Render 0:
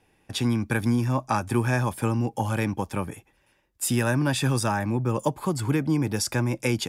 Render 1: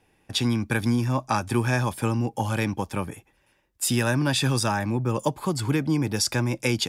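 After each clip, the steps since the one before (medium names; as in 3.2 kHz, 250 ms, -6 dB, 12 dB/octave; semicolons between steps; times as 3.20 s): dynamic bell 4.2 kHz, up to +6 dB, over -46 dBFS, Q 1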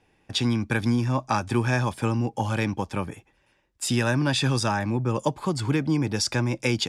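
low-pass 7.6 kHz 12 dB/octave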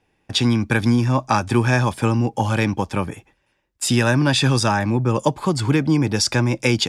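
gate -57 dBFS, range -8 dB; trim +6 dB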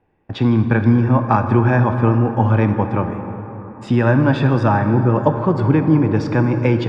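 low-pass 1.4 kHz 12 dB/octave; plate-style reverb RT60 4.1 s, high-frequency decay 0.45×, DRR 6.5 dB; trim +3 dB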